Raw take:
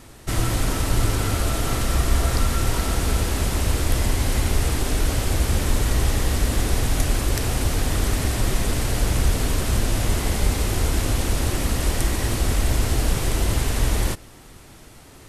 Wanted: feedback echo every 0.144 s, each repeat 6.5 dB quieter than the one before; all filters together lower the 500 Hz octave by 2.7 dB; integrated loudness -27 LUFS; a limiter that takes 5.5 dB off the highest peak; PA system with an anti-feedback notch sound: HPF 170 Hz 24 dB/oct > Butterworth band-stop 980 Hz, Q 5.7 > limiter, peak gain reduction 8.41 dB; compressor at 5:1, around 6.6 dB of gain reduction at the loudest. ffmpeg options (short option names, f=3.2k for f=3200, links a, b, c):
-af "equalizer=f=500:t=o:g=-3.5,acompressor=threshold=-22dB:ratio=5,alimiter=limit=-18dB:level=0:latency=1,highpass=f=170:w=0.5412,highpass=f=170:w=1.3066,asuperstop=centerf=980:order=8:qfactor=5.7,aecho=1:1:144|288|432|576|720|864:0.473|0.222|0.105|0.0491|0.0231|0.0109,volume=8.5dB,alimiter=limit=-18.5dB:level=0:latency=1"